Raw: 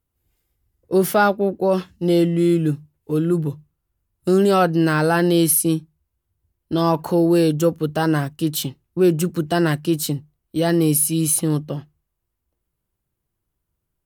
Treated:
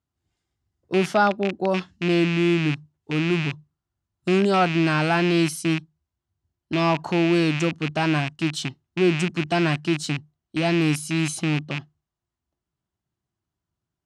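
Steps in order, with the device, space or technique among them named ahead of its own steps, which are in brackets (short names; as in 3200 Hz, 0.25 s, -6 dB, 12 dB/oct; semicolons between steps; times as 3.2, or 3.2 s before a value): car door speaker with a rattle (rattling part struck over -25 dBFS, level -13 dBFS; speaker cabinet 86–7300 Hz, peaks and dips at 490 Hz -10 dB, 700 Hz +3 dB, 2400 Hz -4 dB); gain -2.5 dB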